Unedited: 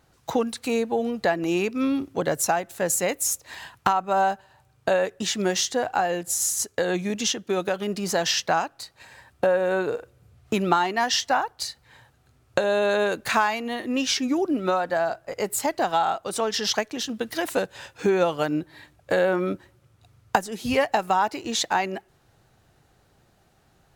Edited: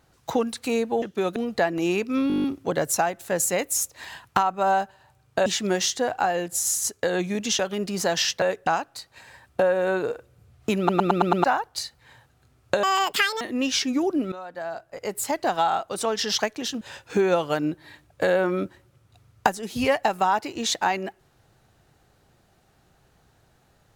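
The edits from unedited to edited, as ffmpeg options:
-filter_complex "[0:a]asplit=25[s0][s1][s2][s3][s4][s5][s6][s7][s8][s9][s10][s11][s12][s13][s14][s15][s16][s17][s18][s19][s20][s21][s22][s23][s24];[s0]atrim=end=1.022[s25];[s1]atrim=start=7.338:end=7.682[s26];[s2]atrim=start=1.018:end=1.962[s27];[s3]atrim=start=1.938:end=1.962[s28];[s4]atrim=start=1.938:end=1.962[s29];[s5]atrim=start=1.938:end=1.962[s30];[s6]atrim=start=1.938:end=1.962[s31];[s7]atrim=start=1.938:end=1.962[s32];[s8]atrim=start=1.938:end=1.962[s33];[s9]atrim=start=1.938:end=1.962[s34];[s10]atrim=start=1.938:end=4.962[s35];[s11]atrim=start=5.208:end=7.342[s36];[s12]atrim=start=7.678:end=8.512[s37];[s13]atrim=start=4.958:end=5.212[s38];[s14]atrim=start=8.508:end=10.732[s39];[s15]atrim=start=10.618:end=10.732[s40];[s16]atrim=start=10.618:end=10.732[s41];[s17]atrim=start=10.618:end=10.732[s42];[s18]atrim=start=10.618:end=10.732[s43];[s19]atrim=start=10.618:end=10.732[s44];[s20]atrim=start=11.278:end=12.674[s45];[s21]atrim=start=12.67:end=13.76,asetpts=PTS-STARTPTS,asetrate=82908,aresample=44100[s46];[s22]atrim=start=13.756:end=14.67,asetpts=PTS-STARTPTS,afade=t=out:st=0.91:d=0.004:c=hsin:silence=0.125893[s47];[s23]atrim=start=14.67:end=17.162,asetpts=PTS-STARTPTS,afade=t=in:d=1.17:silence=0.125893[s48];[s24]atrim=start=17.698[s49];[s25][s26]acrossfade=d=0.004:c1=hsin:c2=hsin[s50];[s50][s27]acrossfade=d=0.004:c1=hsin:c2=hsin[s51];[s51][s28]acrossfade=d=0.004:c1=hsin:c2=hsin[s52];[s52][s29]acrossfade=d=0.004:c1=hsin:c2=hsin[s53];[s53][s30]acrossfade=d=0.004:c1=hsin:c2=hsin[s54];[s54][s31]acrossfade=d=0.004:c1=hsin:c2=hsin[s55];[s55][s32]acrossfade=d=0.004:c1=hsin:c2=hsin[s56];[s56][s33]acrossfade=d=0.004:c1=hsin:c2=hsin[s57];[s57][s34]acrossfade=d=0.004:c1=hsin:c2=hsin[s58];[s58][s35]acrossfade=d=0.004:c1=hsin:c2=hsin[s59];[s59][s36]acrossfade=d=0.004:c1=hsin:c2=hsin[s60];[s60][s37]acrossfade=d=0.004:c1=hsin:c2=hsin[s61];[s61][s38]acrossfade=d=0.004:c1=hsin:c2=hsin[s62];[s62][s39]acrossfade=d=0.004:c1=hsin:c2=hsin[s63];[s63][s40]acrossfade=d=0.004:c1=hsin:c2=hsin[s64];[s64][s41]acrossfade=d=0.004:c1=hsin:c2=hsin[s65];[s65][s42]acrossfade=d=0.004:c1=hsin:c2=hsin[s66];[s66][s43]acrossfade=d=0.004:c1=hsin:c2=hsin[s67];[s67][s44]acrossfade=d=0.004:c1=hsin:c2=hsin[s68];[s68][s45]acrossfade=d=0.004:c1=hsin:c2=hsin[s69];[s69][s46]acrossfade=d=0.004:c1=hsin:c2=hsin[s70];[s47][s48]concat=n=2:v=0:a=1[s71];[s70][s71]acrossfade=d=0.004:c1=hsin:c2=hsin[s72];[s72][s49]acrossfade=d=0.004:c1=hsin:c2=hsin"

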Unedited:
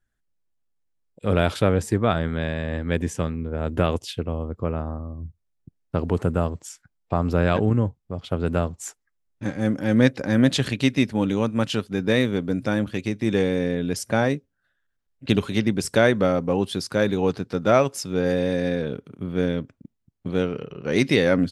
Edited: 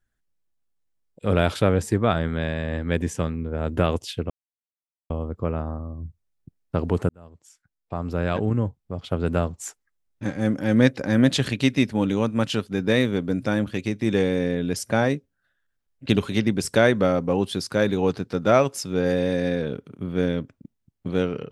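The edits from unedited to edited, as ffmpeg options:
-filter_complex "[0:a]asplit=3[s0][s1][s2];[s0]atrim=end=4.3,asetpts=PTS-STARTPTS,afade=t=out:st=4.296:d=0.004:c=hsin,apad=pad_dur=0.8[s3];[s1]atrim=start=4.3:end=6.29,asetpts=PTS-STARTPTS,afade=t=in:d=0.004:c=hsin,afade=t=out:st=1.986:d=0.004:c=hsin[s4];[s2]atrim=start=6.29,asetpts=PTS-STARTPTS,afade=t=in:d=1.94[s5];[s3][s4][s5]concat=n=3:v=0:a=1"

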